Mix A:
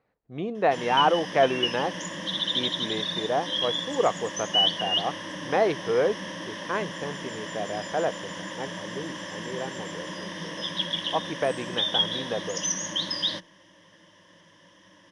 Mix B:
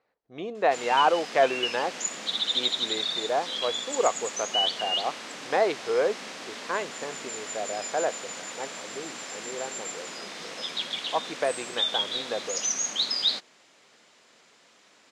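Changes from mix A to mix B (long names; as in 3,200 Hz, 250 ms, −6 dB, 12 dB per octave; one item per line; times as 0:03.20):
background: remove EQ curve with evenly spaced ripples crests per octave 1.2, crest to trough 16 dB
master: add bass and treble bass −14 dB, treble +7 dB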